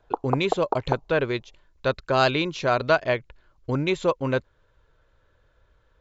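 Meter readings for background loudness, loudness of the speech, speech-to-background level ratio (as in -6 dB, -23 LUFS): -30.5 LUFS, -25.0 LUFS, 5.5 dB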